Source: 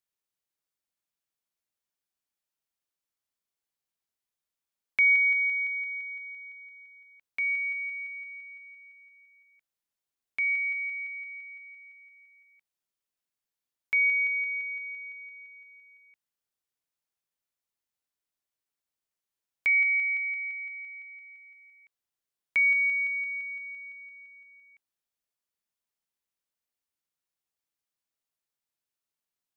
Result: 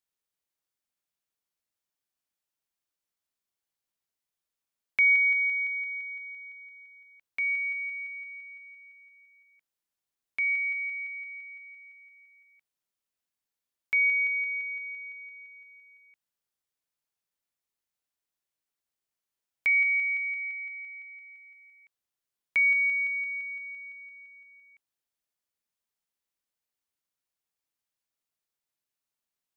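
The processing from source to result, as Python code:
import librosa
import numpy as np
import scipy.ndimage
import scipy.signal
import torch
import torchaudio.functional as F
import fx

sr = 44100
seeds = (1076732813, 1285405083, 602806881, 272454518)

y = fx.low_shelf(x, sr, hz=370.0, db=-10.5, at=(19.69, 20.4), fade=0.02)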